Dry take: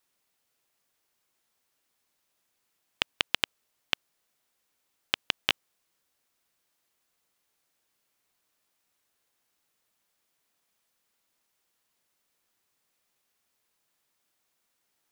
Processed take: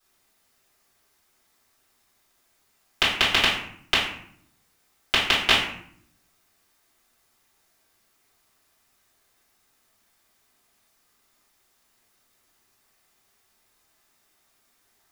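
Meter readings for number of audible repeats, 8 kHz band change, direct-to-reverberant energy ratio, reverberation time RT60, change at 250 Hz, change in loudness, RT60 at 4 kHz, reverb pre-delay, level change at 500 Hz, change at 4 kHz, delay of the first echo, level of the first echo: no echo audible, +10.0 dB, −10.5 dB, 0.65 s, +12.5 dB, +9.0 dB, 0.45 s, 3 ms, +11.0 dB, +9.0 dB, no echo audible, no echo audible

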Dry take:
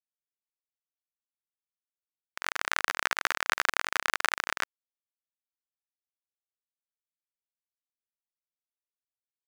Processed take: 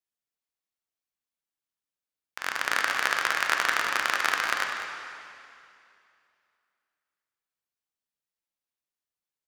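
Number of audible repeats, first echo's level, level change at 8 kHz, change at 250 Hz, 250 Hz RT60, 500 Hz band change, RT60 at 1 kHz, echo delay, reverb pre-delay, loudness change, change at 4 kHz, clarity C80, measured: 1, −11.0 dB, +2.0 dB, +3.5 dB, 2.6 s, +3.5 dB, 2.5 s, 198 ms, 5 ms, +3.0 dB, +3.0 dB, 3.0 dB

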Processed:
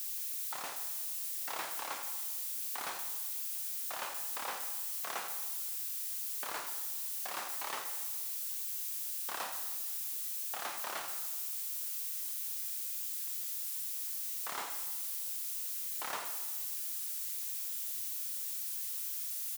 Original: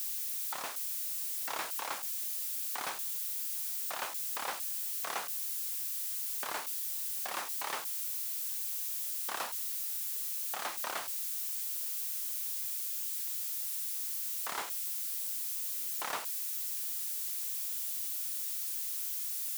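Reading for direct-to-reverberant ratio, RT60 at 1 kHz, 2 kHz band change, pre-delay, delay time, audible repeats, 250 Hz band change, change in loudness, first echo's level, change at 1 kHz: 5.5 dB, 1.3 s, −2.0 dB, 23 ms, 84 ms, 1, −2.0 dB, −2.0 dB, −12.0 dB, −2.0 dB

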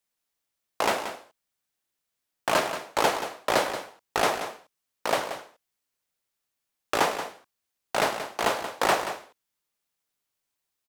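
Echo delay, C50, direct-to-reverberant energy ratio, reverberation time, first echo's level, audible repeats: 180 ms, no reverb audible, no reverb audible, no reverb audible, −10.5 dB, 1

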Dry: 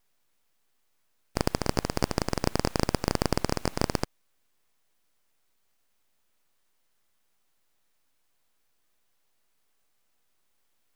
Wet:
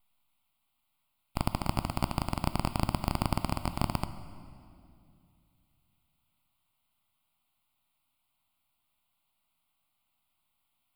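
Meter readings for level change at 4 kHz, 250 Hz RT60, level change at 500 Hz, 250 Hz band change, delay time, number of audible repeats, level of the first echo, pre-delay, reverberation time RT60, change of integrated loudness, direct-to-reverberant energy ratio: −6.5 dB, 3.0 s, −9.5 dB, −3.5 dB, no echo audible, no echo audible, no echo audible, 14 ms, 2.5 s, −3.5 dB, 11.5 dB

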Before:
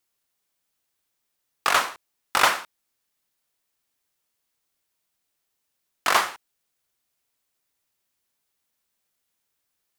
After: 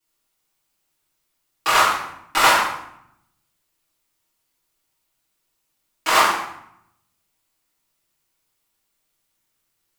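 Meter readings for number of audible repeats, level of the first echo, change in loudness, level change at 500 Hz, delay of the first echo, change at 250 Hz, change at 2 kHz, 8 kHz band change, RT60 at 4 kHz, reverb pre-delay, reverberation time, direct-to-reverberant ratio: no echo audible, no echo audible, +5.0 dB, +5.5 dB, no echo audible, +7.5 dB, +4.5 dB, +4.5 dB, 0.55 s, 3 ms, 0.75 s, −12.5 dB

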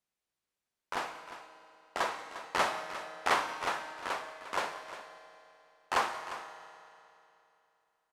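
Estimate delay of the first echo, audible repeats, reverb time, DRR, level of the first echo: 183 ms, 2, 3.0 s, 7.0 dB, −20.0 dB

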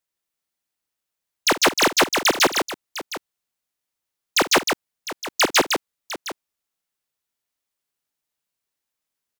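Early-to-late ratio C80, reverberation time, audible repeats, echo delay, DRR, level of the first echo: no reverb audible, no reverb audible, 3, 50 ms, no reverb audible, −15.5 dB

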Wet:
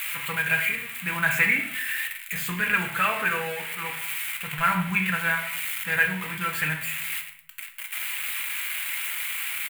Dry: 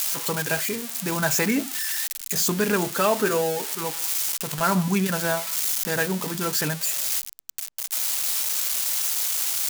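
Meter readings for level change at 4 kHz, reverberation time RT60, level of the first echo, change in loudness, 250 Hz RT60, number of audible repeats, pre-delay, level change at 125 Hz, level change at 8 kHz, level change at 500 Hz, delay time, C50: −4.0 dB, 0.60 s, −17.0 dB, −2.0 dB, 0.70 s, 1, 4 ms, −4.5 dB, −11.0 dB, −11.5 dB, 112 ms, 8.5 dB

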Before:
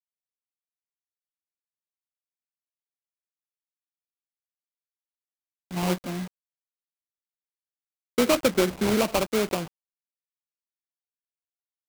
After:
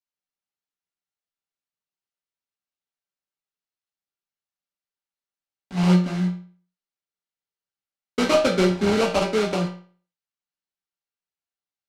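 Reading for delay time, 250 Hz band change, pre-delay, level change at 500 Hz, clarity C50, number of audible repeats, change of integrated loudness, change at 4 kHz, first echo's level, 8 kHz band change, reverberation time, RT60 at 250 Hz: no echo audible, +5.0 dB, 5 ms, +3.0 dB, 8.5 dB, no echo audible, +3.5 dB, +2.5 dB, no echo audible, −3.0 dB, 0.45 s, 0.45 s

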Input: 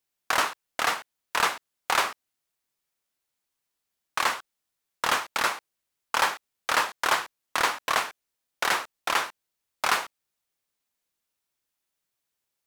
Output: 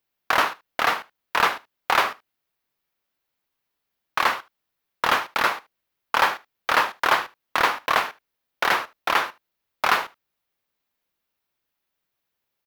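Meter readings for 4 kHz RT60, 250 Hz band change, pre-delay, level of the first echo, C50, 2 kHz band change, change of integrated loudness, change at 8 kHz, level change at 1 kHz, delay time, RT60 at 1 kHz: no reverb audible, +5.0 dB, no reverb audible, −21.5 dB, no reverb audible, +4.0 dB, +4.0 dB, −4.5 dB, +4.5 dB, 76 ms, no reverb audible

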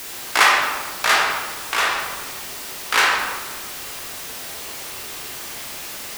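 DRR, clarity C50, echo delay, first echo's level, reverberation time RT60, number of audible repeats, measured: −2.5 dB, 1.5 dB, no echo audible, no echo audible, 1.4 s, no echo audible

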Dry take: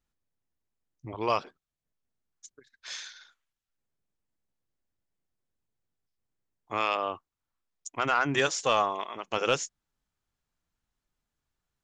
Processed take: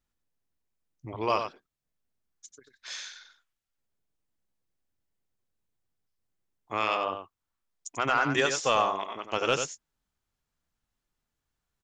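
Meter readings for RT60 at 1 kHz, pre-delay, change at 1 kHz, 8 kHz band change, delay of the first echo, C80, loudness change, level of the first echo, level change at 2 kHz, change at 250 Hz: no reverb audible, no reverb audible, +0.5 dB, +0.5 dB, 92 ms, no reverb audible, +0.5 dB, −7.5 dB, +0.5 dB, +0.5 dB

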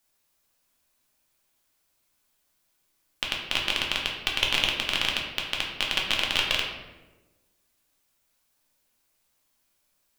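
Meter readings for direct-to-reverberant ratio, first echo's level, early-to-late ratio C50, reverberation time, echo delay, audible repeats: −2.0 dB, no echo audible, 4.0 dB, 1.2 s, no echo audible, no echo audible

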